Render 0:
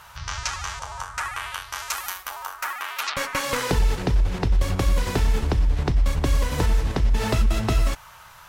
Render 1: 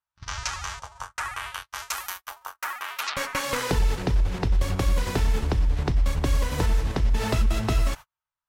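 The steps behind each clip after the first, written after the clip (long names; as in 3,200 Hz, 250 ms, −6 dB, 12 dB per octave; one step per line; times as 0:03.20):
noise gate −32 dBFS, range −45 dB
level −2 dB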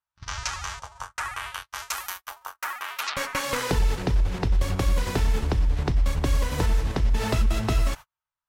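no processing that can be heard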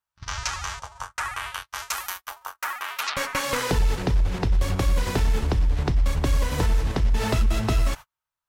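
soft clipping −12.5 dBFS, distortion −25 dB
level +2 dB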